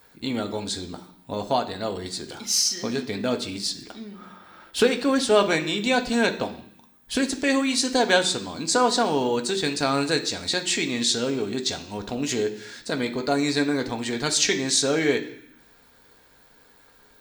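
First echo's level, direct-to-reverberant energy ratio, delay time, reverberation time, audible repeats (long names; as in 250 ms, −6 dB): no echo audible, 4.0 dB, no echo audible, 0.65 s, no echo audible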